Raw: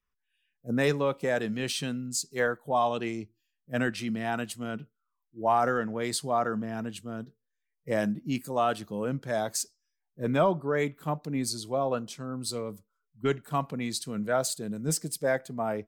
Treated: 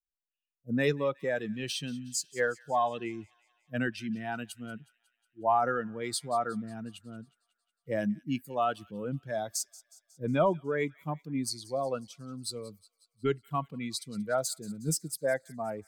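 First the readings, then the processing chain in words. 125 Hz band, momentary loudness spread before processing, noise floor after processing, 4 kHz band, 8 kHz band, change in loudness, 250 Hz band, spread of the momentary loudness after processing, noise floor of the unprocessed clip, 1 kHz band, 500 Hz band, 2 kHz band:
-3.0 dB, 11 LU, under -85 dBFS, -3.0 dB, -2.5 dB, -2.5 dB, -3.5 dB, 13 LU, -82 dBFS, -2.5 dB, -3.0 dB, -3.0 dB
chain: expander on every frequency bin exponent 1.5; feedback echo behind a high-pass 182 ms, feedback 59%, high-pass 2.3 kHz, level -19 dB

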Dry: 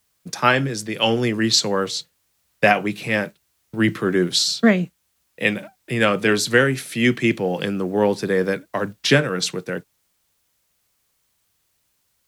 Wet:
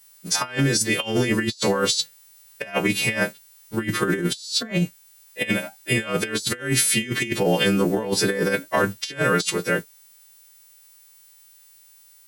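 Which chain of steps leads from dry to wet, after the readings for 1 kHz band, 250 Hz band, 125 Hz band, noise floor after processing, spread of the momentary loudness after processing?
-4.0 dB, -3.0 dB, -1.0 dB, -52 dBFS, 7 LU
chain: partials quantised in pitch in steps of 2 st; compressor with a negative ratio -22 dBFS, ratio -0.5

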